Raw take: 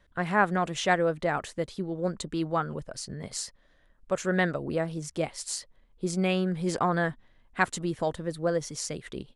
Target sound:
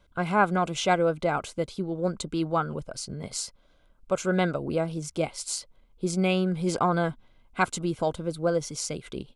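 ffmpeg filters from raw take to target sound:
-af "asuperstop=centerf=1800:order=8:qfactor=5,volume=2dB"

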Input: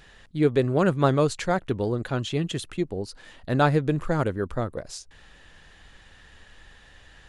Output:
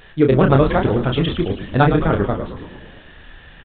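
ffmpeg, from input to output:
-filter_complex "[0:a]acontrast=56,atempo=2,asplit=2[a][b];[b]adelay=30,volume=-5.5dB[c];[a][c]amix=inputs=2:normalize=0,asplit=9[d][e][f][g][h][i][j][k][l];[e]adelay=109,afreqshift=-92,volume=-10dB[m];[f]adelay=218,afreqshift=-184,volume=-13.9dB[n];[g]adelay=327,afreqshift=-276,volume=-17.8dB[o];[h]adelay=436,afreqshift=-368,volume=-21.6dB[p];[i]adelay=545,afreqshift=-460,volume=-25.5dB[q];[j]adelay=654,afreqshift=-552,volume=-29.4dB[r];[k]adelay=763,afreqshift=-644,volume=-33.3dB[s];[l]adelay=872,afreqshift=-736,volume=-37.1dB[t];[d][m][n][o][p][q][r][s][t]amix=inputs=9:normalize=0,aresample=8000,aresample=44100,volume=1.5dB"

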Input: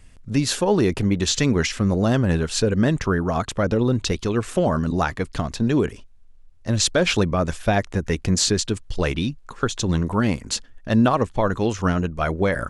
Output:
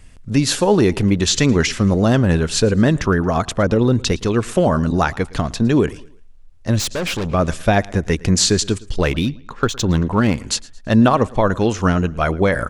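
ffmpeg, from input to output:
-filter_complex "[0:a]aecho=1:1:112|224|336:0.075|0.0292|0.0114,asettb=1/sr,asplit=3[a][b][c];[a]atrim=end=6.794[d];[b]atrim=start=6.79:end=7.34,asetpts=PTS-STARTPTS,afade=t=in:d=0.004:c=qsin,afade=t=out:st=0.546:d=0.004:c=qsin,aeval=exprs='(tanh(15.8*val(0)+0.4)-tanh(0.4))/15.8':c=same[e];[c]atrim=start=7.336[f];[d][e]acrossfade=d=0.004:c1=hsin:c2=qsin[g];[g][f]acrossfade=d=0.004:c1=qsin:c2=hsin,asettb=1/sr,asplit=3[h][i][j];[h]atrim=end=8.984[k];[i]atrim=start=8.98:end=10.38,asetpts=PTS-STARTPTS,afade=t=in:d=0.004:c=qsin,afade=t=out:st=1.396:d=0.004:c=qsin,adynamicsmooth=sensitivity=7:basefreq=4.3k[l];[j]atrim=start=10.376[m];[k][l]acrossfade=d=0.004:c1=hsin:c2=qsin[n];[n][m]acrossfade=d=0.004:c1=qsin:c2=hsin,volume=4.5dB"

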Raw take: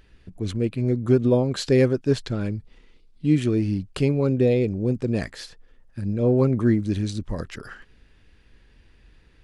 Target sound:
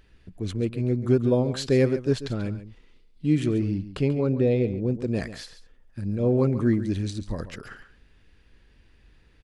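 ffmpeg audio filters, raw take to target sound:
-filter_complex "[0:a]asettb=1/sr,asplit=3[a][b][c];[a]atrim=end=3.524[d];[b]atrim=start=3.52:end=4.96,asetpts=PTS-STARTPTS,afade=t=in:d=0.004:c=qsin,afade=t=out:st=1.436:d=0.004:c=qsin,lowpass=f=3.4k:p=1[e];[c]atrim=start=4.956[f];[d][e]acrossfade=d=0.004:c1=hsin:c2=qsin[g];[g][f]acrossfade=d=0.004:c1=qsin:c2=hsin,aecho=1:1:138:0.224,volume=-2.5dB"

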